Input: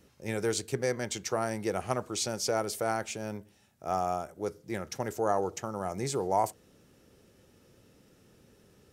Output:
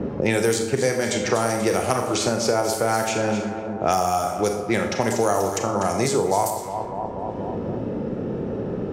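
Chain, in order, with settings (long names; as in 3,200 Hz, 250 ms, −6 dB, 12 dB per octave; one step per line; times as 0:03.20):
on a send: delay that swaps between a low-pass and a high-pass 121 ms, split 1,200 Hz, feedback 66%, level −9 dB
on the sum: low-pass that shuts in the quiet parts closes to 640 Hz, open at −27.5 dBFS
high-shelf EQ 11,000 Hz +7.5 dB
four-comb reverb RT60 0.39 s, combs from 27 ms, DRR 4.5 dB
multiband upward and downward compressor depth 100%
level +8 dB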